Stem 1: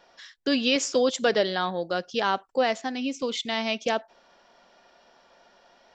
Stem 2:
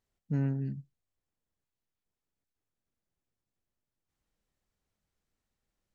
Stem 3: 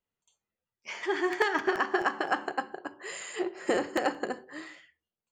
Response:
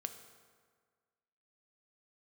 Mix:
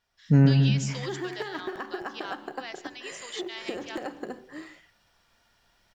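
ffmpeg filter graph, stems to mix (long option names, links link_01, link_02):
-filter_complex "[0:a]highpass=1400,volume=-17.5dB,asplit=2[link_01][link_02];[link_02]volume=-22dB[link_03];[1:a]volume=0.5dB,asplit=2[link_04][link_05];[link_05]volume=-8.5dB[link_06];[2:a]acrusher=bits=9:mode=log:mix=0:aa=0.000001,volume=-15dB[link_07];[link_01][link_07]amix=inputs=2:normalize=0,lowshelf=frequency=350:gain=10.5,acompressor=threshold=-43dB:ratio=6,volume=0dB[link_08];[link_03][link_06]amix=inputs=2:normalize=0,aecho=0:1:141|282|423|564|705|846|987:1|0.51|0.26|0.133|0.0677|0.0345|0.0176[link_09];[link_04][link_08][link_09]amix=inputs=3:normalize=0,dynaudnorm=framelen=160:gausssize=3:maxgain=12dB"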